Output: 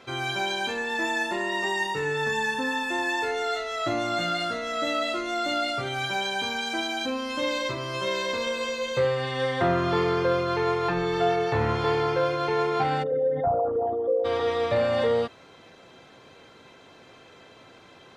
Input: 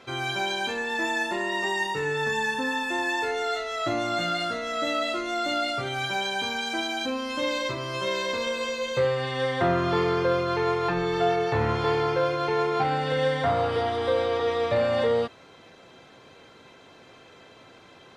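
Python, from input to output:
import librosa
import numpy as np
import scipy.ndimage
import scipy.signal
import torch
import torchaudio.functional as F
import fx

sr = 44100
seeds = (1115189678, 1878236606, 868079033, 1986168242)

y = fx.envelope_sharpen(x, sr, power=3.0, at=(13.02, 14.24), fade=0.02)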